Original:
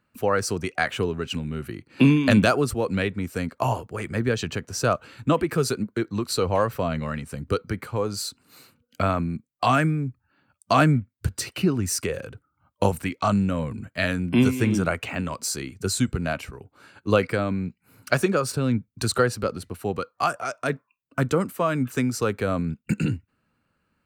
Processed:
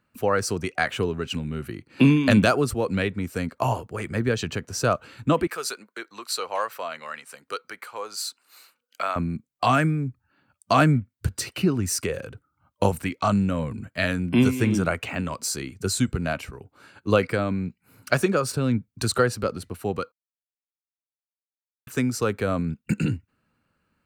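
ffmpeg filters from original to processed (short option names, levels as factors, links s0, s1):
-filter_complex "[0:a]asettb=1/sr,asplit=3[s0][s1][s2];[s0]atrim=end=5.474[s3];[s1]atrim=start=5.47:end=9.16,asetpts=PTS-STARTPTS,afade=t=in:d=0.004:c=qsin,afade=t=out:st=3.686:d=0.004:c=qsin,highpass=810[s4];[s2]atrim=start=9.156[s5];[s3][s4]acrossfade=d=0.004:c1=hsin:c2=qsin[s6];[s6][s5]acrossfade=d=0.004:c1=qsin:c2=hsin,asplit=3[s7][s8][s9];[s7]atrim=end=20.12,asetpts=PTS-STARTPTS,afade=t=out:st=20.116:d=0.004:c=hsin[s10];[s8]atrim=start=20.12:end=21.87,asetpts=PTS-STARTPTS,volume=0[s11];[s9]atrim=start=21.87,asetpts=PTS-STARTPTS,afade=t=in:d=0.004:c=hsin[s12];[s10][s11][s12]concat=n=3:v=0:a=1"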